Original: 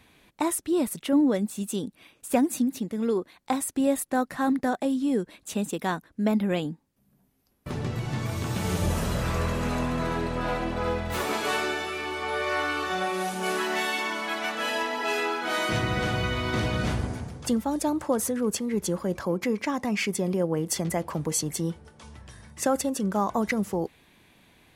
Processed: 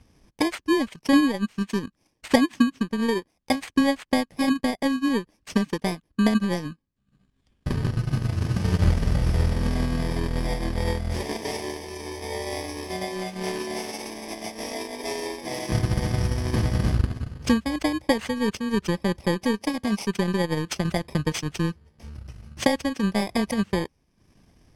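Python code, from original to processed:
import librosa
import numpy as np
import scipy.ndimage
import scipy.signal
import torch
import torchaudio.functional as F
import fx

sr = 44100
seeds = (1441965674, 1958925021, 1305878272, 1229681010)

y = fx.bit_reversed(x, sr, seeds[0], block=32)
y = fx.transient(y, sr, attack_db=7, sustain_db=-10)
y = scipy.signal.sosfilt(scipy.signal.butter(2, 5500.0, 'lowpass', fs=sr, output='sos'), y)
y = fx.low_shelf(y, sr, hz=100.0, db=11.5)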